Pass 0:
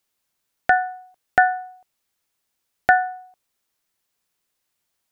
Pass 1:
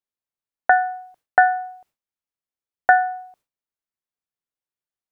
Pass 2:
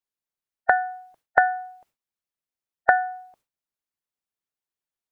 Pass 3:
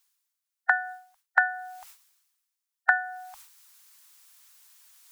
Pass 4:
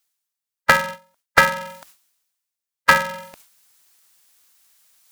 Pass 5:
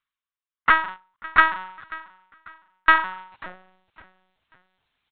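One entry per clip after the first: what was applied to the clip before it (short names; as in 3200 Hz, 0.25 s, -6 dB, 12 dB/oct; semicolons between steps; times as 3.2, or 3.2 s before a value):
gate with hold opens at -50 dBFS; high shelf 2300 Hz -8 dB; in parallel at -2 dB: compressor, threshold -24 dBFS, peak gain reduction 12 dB; on the sum: gain +1 dB
harmonic-percussive split harmonic -8 dB; gain +2.5 dB
inverse Chebyshev band-stop 160–410 Hz, stop band 60 dB; tone controls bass -12 dB, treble +7 dB; reverse; upward compressor, threshold -33 dBFS; reverse
sample leveller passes 2; polarity switched at an audio rate 190 Hz; gain +2.5 dB
feedback echo 0.545 s, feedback 34%, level -20 dB; high-pass sweep 1100 Hz -> 120 Hz, 3.3–3.89; LPC vocoder at 8 kHz pitch kept; gain -6 dB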